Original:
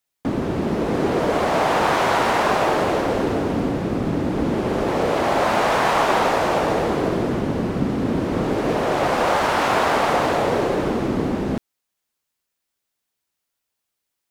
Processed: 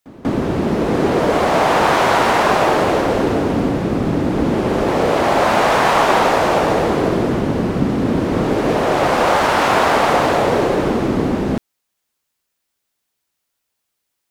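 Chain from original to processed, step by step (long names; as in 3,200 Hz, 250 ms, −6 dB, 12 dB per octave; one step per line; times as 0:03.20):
echo ahead of the sound 191 ms −20.5 dB
level +4.5 dB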